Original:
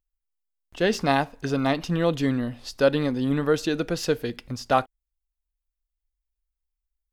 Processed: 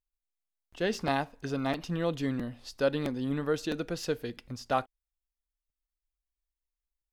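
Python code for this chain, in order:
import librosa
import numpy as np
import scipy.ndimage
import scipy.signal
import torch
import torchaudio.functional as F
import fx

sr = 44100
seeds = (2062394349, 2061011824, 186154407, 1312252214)

y = fx.buffer_crackle(x, sr, first_s=0.41, period_s=0.66, block=256, kind='repeat')
y = F.gain(torch.from_numpy(y), -7.5).numpy()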